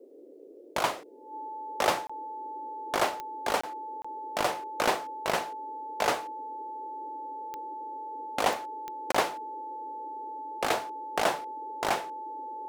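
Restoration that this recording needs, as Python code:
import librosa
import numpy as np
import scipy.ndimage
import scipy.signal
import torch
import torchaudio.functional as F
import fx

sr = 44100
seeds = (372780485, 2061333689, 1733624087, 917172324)

y = fx.fix_declick_ar(x, sr, threshold=10.0)
y = fx.notch(y, sr, hz=870.0, q=30.0)
y = fx.fix_interpolate(y, sr, at_s=(2.07, 3.61, 4.02, 9.12), length_ms=25.0)
y = fx.noise_reduce(y, sr, print_start_s=0.0, print_end_s=0.5, reduce_db=30.0)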